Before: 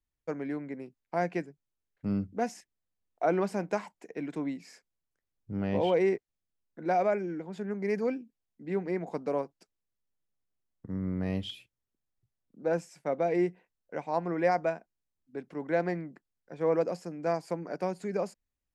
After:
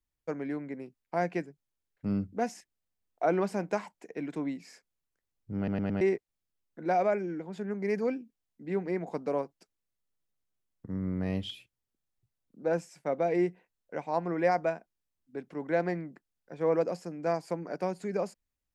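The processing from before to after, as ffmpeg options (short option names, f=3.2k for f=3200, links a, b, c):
-filter_complex "[0:a]asplit=5[a][b][c][d][e];[a]atrim=end=5.682[f];[b]atrim=start=5.568:end=5.682[g];[c]atrim=start=5.568:end=5.682[h];[d]atrim=start=5.568:end=5.682[i];[e]atrim=start=6.008[j];[f][g]acrossfade=d=0.004:c1=hsin:c2=hsin[k];[k][h]acrossfade=d=0.004:c1=hsin:c2=hsin[l];[l][i]acrossfade=d=0.004:c1=hsin:c2=hsin[m];[m][j]acrossfade=d=0.004:c1=hsin:c2=hsin"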